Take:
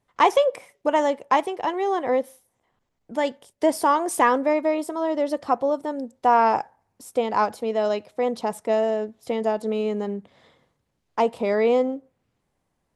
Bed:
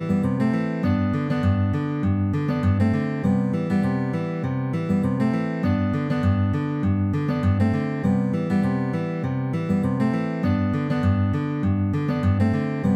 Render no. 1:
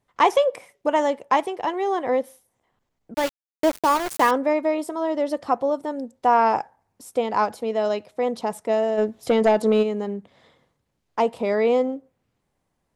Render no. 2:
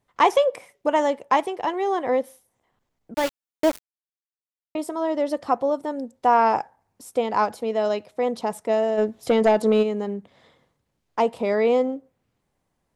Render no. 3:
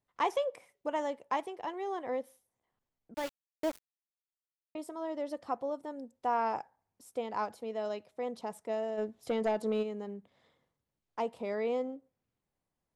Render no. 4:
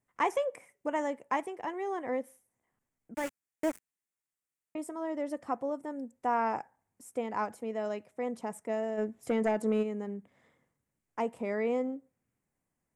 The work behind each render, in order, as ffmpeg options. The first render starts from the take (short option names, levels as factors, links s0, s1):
-filter_complex "[0:a]asettb=1/sr,asplit=3[s0][s1][s2];[s0]atrim=end=3.144[s3];[s1]atrim=start=3.14:end=4.31,asetpts=PTS-STARTPTS,afade=t=in:d=0.004:c=qsin,afade=t=out:st=1.166:d=0.004:c=qsin,aeval=exprs='val(0)*gte(abs(val(0)),0.0631)':c=same[s4];[s2]atrim=start=4.306[s5];[s3][s4]acrossfade=d=0.004:c1=hsin:c2=qsin[s6];[s6][s5]acrossfade=d=0.004:c1=qsin:c2=hsin,asplit=3[s7][s8][s9];[s7]afade=t=out:st=8.97:d=0.02[s10];[s8]aeval=exprs='0.282*sin(PI/2*1.58*val(0)/0.282)':c=same,afade=t=in:st=8.97:d=0.02,afade=t=out:st=9.82:d=0.02[s11];[s9]afade=t=in:st=9.82:d=0.02[s12];[s10][s11][s12]amix=inputs=3:normalize=0"
-filter_complex "[0:a]asplit=3[s0][s1][s2];[s0]atrim=end=3.8,asetpts=PTS-STARTPTS,afade=t=out:st=3.796:d=0.004:c=hsin[s3];[s1]atrim=start=3.8:end=4.75,asetpts=PTS-STARTPTS,volume=0[s4];[s2]atrim=start=4.75,asetpts=PTS-STARTPTS,afade=t=in:d=0.004:c=hsin[s5];[s3][s4][s5]concat=n=3:v=0:a=1"
-af "volume=0.224"
-af "equalizer=f=125:t=o:w=1:g=3,equalizer=f=250:t=o:w=1:g=5,equalizer=f=2000:t=o:w=1:g=7,equalizer=f=4000:t=o:w=1:g=-11,equalizer=f=8000:t=o:w=1:g=8"